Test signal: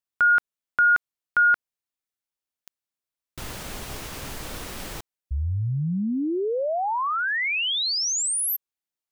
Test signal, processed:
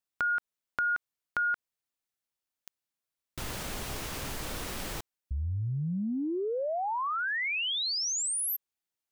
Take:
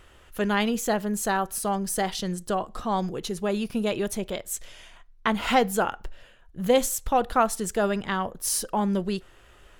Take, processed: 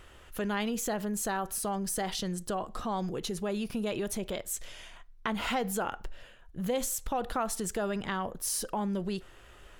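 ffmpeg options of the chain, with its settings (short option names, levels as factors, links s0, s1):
-af "acompressor=threshold=0.02:ratio=2.5:attack=13:release=36:knee=6:detection=rms"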